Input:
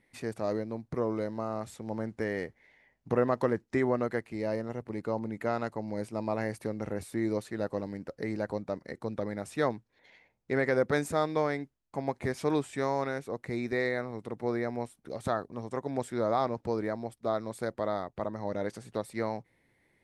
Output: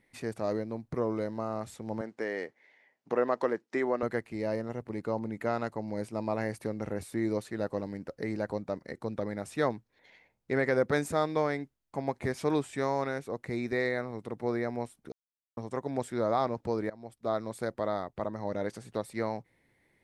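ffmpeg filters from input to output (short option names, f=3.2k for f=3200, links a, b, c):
-filter_complex "[0:a]asettb=1/sr,asplit=3[a][b][c];[a]atrim=end=2.014[d];[b]atrim=start=2.01:end=4.03,asetpts=PTS-STARTPTS,afade=t=in:d=0.004:c=qsin,afade=t=out:st=2.016:d=0.004:c=qsin,highpass=310,lowpass=7.7k[e];[c]atrim=start=4.026[f];[d][e]acrossfade=d=0.004:c1=hsin:c2=qsin[g];[g][f]acrossfade=d=0.004:c1=qsin:c2=hsin,asplit=4[h][i][j][k];[h]atrim=end=15.12,asetpts=PTS-STARTPTS,afade=t=out:st=15.116:d=0.004:c=hsin[l];[i]atrim=start=15.12:end=15.57,asetpts=PTS-STARTPTS,volume=0[m];[j]atrim=start=15.57:end=16.9,asetpts=PTS-STARTPTS,afade=t=in:d=0.004:c=hsin,afade=t=out:st=1.326:d=0.004:c=hsin:silence=0.105925[n];[k]atrim=start=16.9,asetpts=PTS-STARTPTS,afade=t=in:d=0.43:silence=0.105925[o];[l][m][n][o]concat=n=4:v=0:a=1"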